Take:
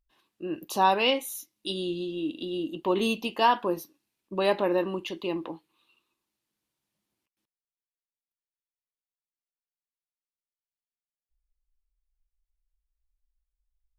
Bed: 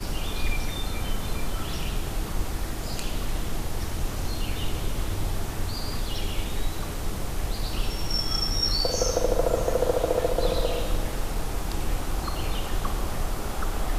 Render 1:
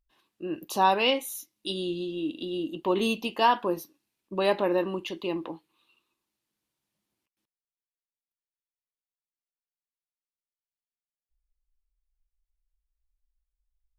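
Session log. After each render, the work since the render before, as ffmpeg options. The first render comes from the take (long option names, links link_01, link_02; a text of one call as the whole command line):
ffmpeg -i in.wav -af anull out.wav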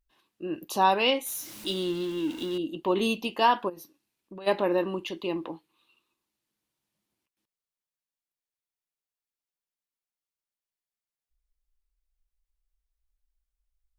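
ffmpeg -i in.wav -filter_complex "[0:a]asettb=1/sr,asplit=3[link_01][link_02][link_03];[link_01]atrim=end=1.264[link_04];[link_02]atrim=start=1.26:end=2.58,asetpts=PTS-STARTPTS,afade=type=in:duration=0.004:curve=qsin,afade=type=out:start_time=1.316:duration=0.004:curve=qsin,aeval=exprs='val(0)+0.5*0.0126*sgn(val(0))':channel_layout=same[link_05];[link_03]atrim=start=2.576[link_06];[link_04][link_05]acrossfade=duration=0.004:curve1=hsin:curve2=qsin[link_07];[link_07][link_06]acrossfade=duration=0.004:curve1=qsin:curve2=hsin,asplit=3[link_08][link_09][link_10];[link_08]afade=type=out:start_time=3.68:duration=0.02[link_11];[link_09]acompressor=threshold=-40dB:ratio=5:attack=3.2:release=140:knee=1:detection=peak,afade=type=in:start_time=3.68:duration=0.02,afade=type=out:start_time=4.46:duration=0.02[link_12];[link_10]afade=type=in:start_time=4.46:duration=0.02[link_13];[link_11][link_12][link_13]amix=inputs=3:normalize=0" out.wav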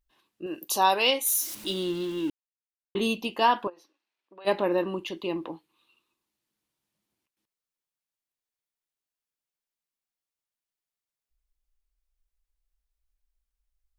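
ffmpeg -i in.wav -filter_complex "[0:a]asettb=1/sr,asplit=3[link_01][link_02][link_03];[link_01]atrim=end=0.464[link_04];[link_02]atrim=start=0.46:end=1.55,asetpts=PTS-STARTPTS,afade=type=in:duration=0.004:curve=qsin,afade=type=out:start_time=1.086:duration=0.004:curve=qsin,bass=frequency=250:gain=-10,treble=frequency=4000:gain=10[link_05];[link_03]atrim=start=1.546[link_06];[link_04][link_05]acrossfade=duration=0.004:curve1=hsin:curve2=qsin[link_07];[link_07][link_06]acrossfade=duration=0.004:curve1=qsin:curve2=hsin,asettb=1/sr,asplit=3[link_08][link_09][link_10];[link_08]atrim=end=3.674[link_11];[link_09]atrim=start=3.67:end=4.45,asetpts=PTS-STARTPTS,afade=type=in:duration=0.004:curve=qsin,afade=type=out:start_time=0.776:duration=0.004:curve=qsin,highpass=580,lowpass=3900[link_12];[link_10]atrim=start=4.446[link_13];[link_11][link_12]acrossfade=duration=0.004:curve1=hsin:curve2=qsin[link_14];[link_14][link_13]acrossfade=duration=0.004:curve1=qsin:curve2=hsin,asplit=3[link_15][link_16][link_17];[link_15]atrim=end=2.3,asetpts=PTS-STARTPTS,afade=type=out:start_time=2.296:duration=0.004:curve=hsin[link_18];[link_16]atrim=start=2.3:end=2.95,asetpts=PTS-STARTPTS,volume=0[link_19];[link_17]atrim=start=2.95,asetpts=PTS-STARTPTS,afade=type=in:duration=0.004:curve=hsin[link_20];[link_18][link_19][link_20]concat=n=3:v=0:a=1" out.wav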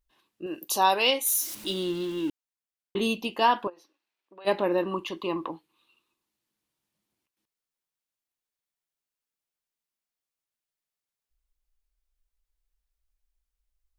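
ffmpeg -i in.wav -filter_complex "[0:a]asettb=1/sr,asplit=3[link_01][link_02][link_03];[link_01]atrim=end=4.914[link_04];[link_02]atrim=start=4.91:end=5.51,asetpts=PTS-STARTPTS,afade=type=in:duration=0.004:curve=qsin,afade=type=out:start_time=0.596:duration=0.004:curve=qsin,equalizer=frequency=1100:width_type=o:width=0.39:gain=13[link_05];[link_03]atrim=start=5.506[link_06];[link_04][link_05]acrossfade=duration=0.004:curve1=hsin:curve2=qsin[link_07];[link_07][link_06]acrossfade=duration=0.004:curve1=qsin:curve2=hsin" out.wav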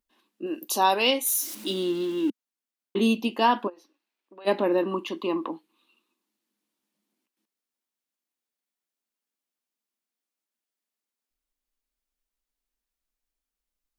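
ffmpeg -i in.wav -af "lowshelf=frequency=160:width_type=q:width=3:gain=-12.5" out.wav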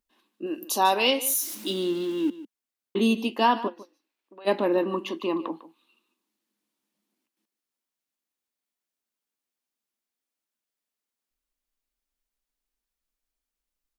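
ffmpeg -i in.wav -af "aecho=1:1:150:0.158" out.wav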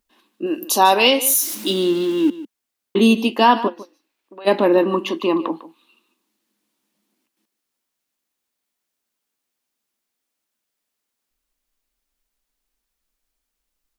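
ffmpeg -i in.wav -af "volume=8.5dB,alimiter=limit=-3dB:level=0:latency=1" out.wav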